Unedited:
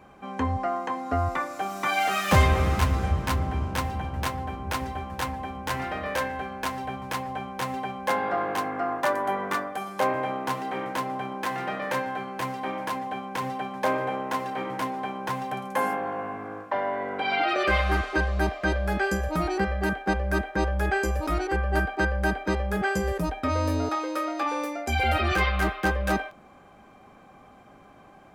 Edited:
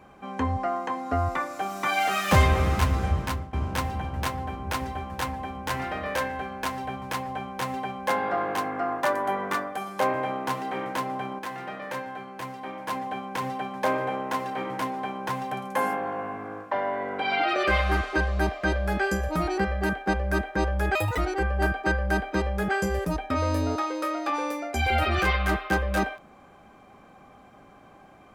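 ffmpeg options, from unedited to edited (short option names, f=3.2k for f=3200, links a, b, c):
-filter_complex "[0:a]asplit=6[a][b][c][d][e][f];[a]atrim=end=3.53,asetpts=PTS-STARTPTS,afade=t=out:st=3.2:d=0.33:silence=0.1[g];[b]atrim=start=3.53:end=11.392,asetpts=PTS-STARTPTS,afade=t=in:d=0.004:c=hsin:silence=0.1[h];[c]atrim=start=11.388:end=12.882,asetpts=PTS-STARTPTS,volume=-5.5dB[i];[d]atrim=start=12.878:end=20.954[j];[e]atrim=start=20.95:end=21.31,asetpts=PTS-STARTPTS,asetrate=69678,aresample=44100,atrim=end_sample=10048,asetpts=PTS-STARTPTS[k];[f]atrim=start=21.306[l];[g][h]concat=n=2:v=0:a=1[m];[m][i]acrossfade=d=0.004:c1=hsin:c2=hsin[n];[n][j]acrossfade=d=0.004:c1=hsin:c2=hsin[o];[o][k]acrossfade=d=0.004:c1=hsin:c2=hsin[p];[p][l]acrossfade=d=0.004:c1=hsin:c2=hsin"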